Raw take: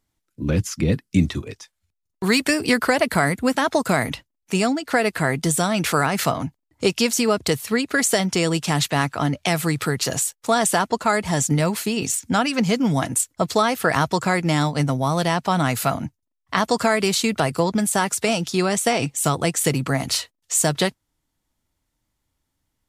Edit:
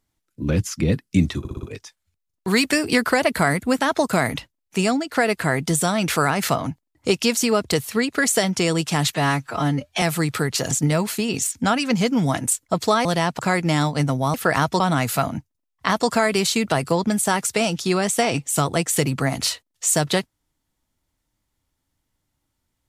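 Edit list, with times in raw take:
1.39 stutter 0.06 s, 5 plays
8.91–9.49 stretch 1.5×
10.18–11.39 cut
13.73–14.19 swap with 15.14–15.48

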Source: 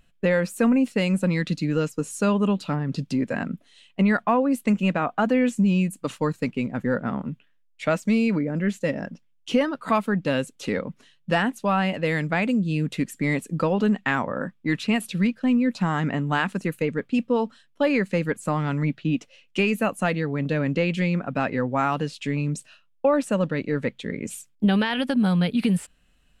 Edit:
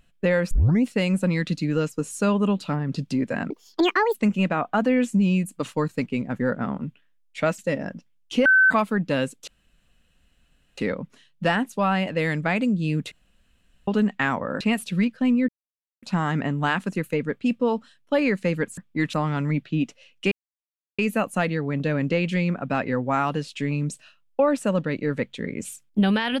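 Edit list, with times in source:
0.51 tape start 0.32 s
3.5–4.59 speed 169%
8.03–8.75 cut
9.62–9.87 bleep 1530 Hz -12.5 dBFS
10.64 insert room tone 1.30 s
12.98–13.74 room tone
14.47–14.83 move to 18.46
15.71 insert silence 0.54 s
19.64 insert silence 0.67 s

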